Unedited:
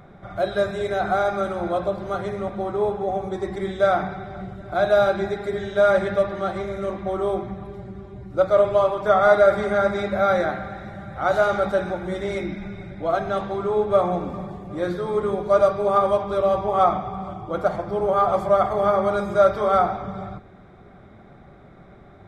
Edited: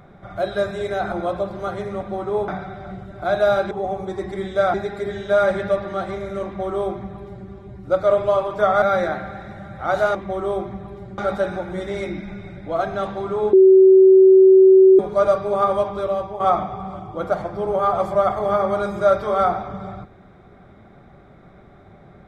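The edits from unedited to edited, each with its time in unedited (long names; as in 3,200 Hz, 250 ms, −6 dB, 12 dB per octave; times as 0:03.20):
0:01.12–0:01.59: remove
0:02.95–0:03.98: move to 0:05.21
0:06.92–0:07.95: duplicate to 0:11.52
0:09.29–0:10.19: remove
0:13.87–0:15.33: beep over 380 Hz −6.5 dBFS
0:16.25–0:16.74: fade out, to −9 dB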